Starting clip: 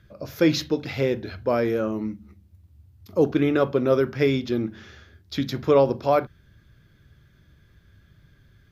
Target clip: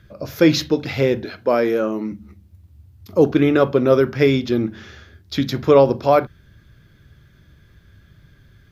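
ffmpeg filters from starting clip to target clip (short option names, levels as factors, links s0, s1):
-filter_complex "[0:a]asettb=1/sr,asplit=3[s0][s1][s2];[s0]atrim=end=1.244[s3];[s1]atrim=start=1.24:end=2.12,asetpts=PTS-STARTPTS,afade=t=in:d=0.004:c=qsin,afade=t=out:st=0.876:d=0.004:c=qsin,highpass=220[s4];[s2]atrim=start=2.116[s5];[s3][s4]acrossfade=d=0.004:c1=hsin:c2=qsin[s6];[s6][s5]acrossfade=d=0.004:c1=qsin:c2=hsin,volume=1.88"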